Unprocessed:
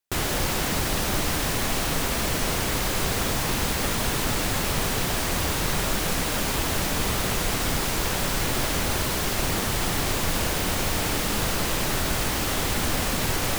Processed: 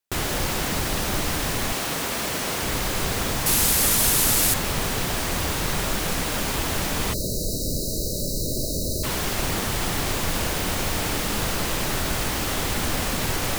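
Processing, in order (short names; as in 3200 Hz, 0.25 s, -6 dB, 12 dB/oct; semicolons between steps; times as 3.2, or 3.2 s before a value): 1.72–2.63 HPF 210 Hz 6 dB/oct; 3.46–4.54 bell 12000 Hz +14 dB 1.8 oct; 7.13–9.04 spectral delete 650–3800 Hz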